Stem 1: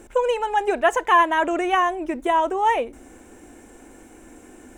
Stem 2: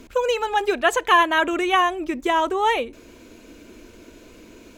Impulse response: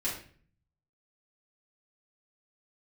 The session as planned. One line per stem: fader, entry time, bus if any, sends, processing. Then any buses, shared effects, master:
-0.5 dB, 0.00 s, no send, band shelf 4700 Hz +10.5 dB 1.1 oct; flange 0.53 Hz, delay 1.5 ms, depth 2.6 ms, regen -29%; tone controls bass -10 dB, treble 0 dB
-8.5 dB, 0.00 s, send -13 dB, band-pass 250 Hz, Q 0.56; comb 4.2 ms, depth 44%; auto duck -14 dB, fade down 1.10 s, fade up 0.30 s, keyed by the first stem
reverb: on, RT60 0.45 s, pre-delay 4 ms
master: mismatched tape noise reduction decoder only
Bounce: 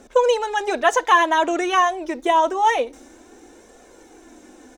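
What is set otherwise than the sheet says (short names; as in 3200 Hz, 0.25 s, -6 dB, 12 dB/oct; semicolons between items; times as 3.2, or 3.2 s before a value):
stem 1 -0.5 dB -> +5.5 dB; stem 2: polarity flipped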